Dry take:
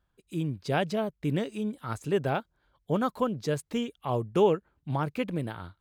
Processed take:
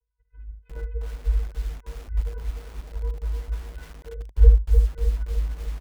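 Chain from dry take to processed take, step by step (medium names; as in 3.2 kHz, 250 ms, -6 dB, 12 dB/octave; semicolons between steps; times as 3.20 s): pitch bend over the whole clip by -10 st starting unshifted; high-pass 140 Hz 12 dB/octave; peaking EQ 1.1 kHz -11.5 dB 0.87 oct; comb 7.1 ms, depth 85%; vocoder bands 8, square 258 Hz; phaser 0.45 Hz, delay 4.7 ms, feedback 57%; vibrato 3.6 Hz 7.5 cents; on a send: early reflections 51 ms -11 dB, 74 ms -11.5 dB; on the sum: mistuned SSB -310 Hz 210–2200 Hz; bit-crushed delay 301 ms, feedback 55%, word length 7-bit, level -4.5 dB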